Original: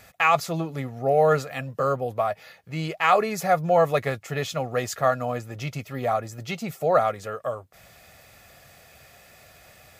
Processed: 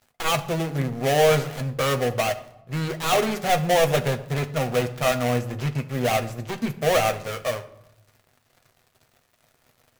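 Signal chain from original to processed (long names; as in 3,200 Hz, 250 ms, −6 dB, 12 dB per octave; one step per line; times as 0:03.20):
gap after every zero crossing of 0.27 ms
leveller curve on the samples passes 2
on a send: convolution reverb RT60 0.85 s, pre-delay 8 ms, DRR 6 dB
on the sum: level −4.5 dB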